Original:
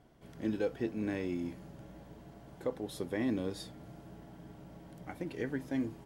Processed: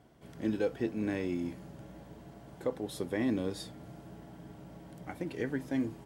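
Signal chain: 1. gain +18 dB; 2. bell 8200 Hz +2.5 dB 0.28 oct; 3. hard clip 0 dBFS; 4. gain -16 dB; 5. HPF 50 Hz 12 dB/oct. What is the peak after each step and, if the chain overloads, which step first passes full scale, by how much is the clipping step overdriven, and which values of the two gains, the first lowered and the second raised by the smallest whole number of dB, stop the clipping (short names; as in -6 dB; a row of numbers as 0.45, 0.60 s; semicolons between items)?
-4.0, -4.0, -4.0, -20.0, -20.0 dBFS; no overload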